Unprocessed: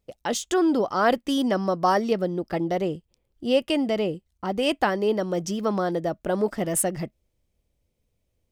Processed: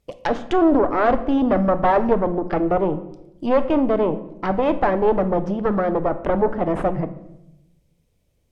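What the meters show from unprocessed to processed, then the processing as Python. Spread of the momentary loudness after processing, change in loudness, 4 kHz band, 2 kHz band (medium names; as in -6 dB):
8 LU, +4.5 dB, no reading, +1.0 dB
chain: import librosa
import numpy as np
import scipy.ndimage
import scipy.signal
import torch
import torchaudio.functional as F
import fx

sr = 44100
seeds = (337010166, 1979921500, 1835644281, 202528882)

y = fx.cheby_harmonics(x, sr, harmonics=(5, 6), levels_db=(-13, -9), full_scale_db=-8.5)
y = fx.env_lowpass_down(y, sr, base_hz=1200.0, full_db=-19.0)
y = fx.room_shoebox(y, sr, seeds[0], volume_m3=280.0, walls='mixed', distance_m=0.35)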